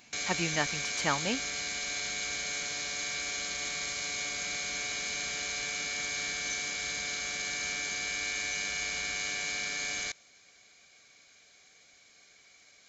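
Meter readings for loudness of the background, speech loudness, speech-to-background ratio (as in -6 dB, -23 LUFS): -32.5 LUFS, -33.5 LUFS, -1.0 dB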